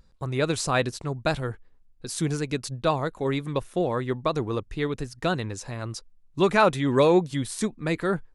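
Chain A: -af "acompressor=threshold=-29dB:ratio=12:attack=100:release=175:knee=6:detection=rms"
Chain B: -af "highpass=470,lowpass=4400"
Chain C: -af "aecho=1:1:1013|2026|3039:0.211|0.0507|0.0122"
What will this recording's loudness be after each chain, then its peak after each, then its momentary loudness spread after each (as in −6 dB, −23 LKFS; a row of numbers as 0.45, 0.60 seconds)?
−32.0, −29.0, −26.0 LKFS; −15.0, −6.0, −7.5 dBFS; 5, 17, 14 LU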